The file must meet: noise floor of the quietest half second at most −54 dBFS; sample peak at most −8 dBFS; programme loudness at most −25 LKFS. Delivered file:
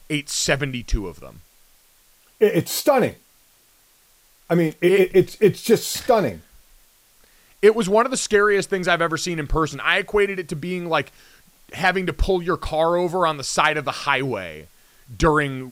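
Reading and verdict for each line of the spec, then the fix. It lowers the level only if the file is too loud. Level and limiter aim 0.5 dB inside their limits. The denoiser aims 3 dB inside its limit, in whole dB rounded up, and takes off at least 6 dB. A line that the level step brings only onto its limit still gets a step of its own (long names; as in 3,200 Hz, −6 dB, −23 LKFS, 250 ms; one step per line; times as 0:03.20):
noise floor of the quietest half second −57 dBFS: in spec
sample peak −3.5 dBFS: out of spec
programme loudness −20.5 LKFS: out of spec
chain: level −5 dB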